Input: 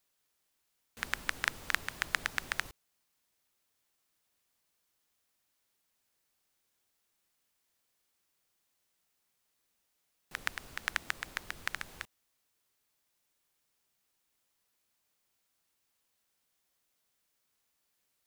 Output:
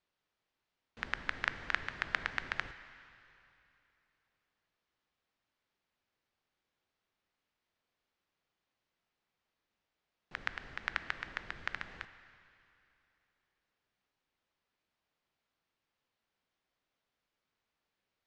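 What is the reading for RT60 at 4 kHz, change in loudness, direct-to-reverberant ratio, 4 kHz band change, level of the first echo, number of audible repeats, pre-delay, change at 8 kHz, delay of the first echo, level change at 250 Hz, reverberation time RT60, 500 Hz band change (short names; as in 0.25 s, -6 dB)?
2.7 s, -2.5 dB, 11.5 dB, -5.0 dB, none, none, 7 ms, -16.5 dB, none, 0.0 dB, 2.9 s, -0.5 dB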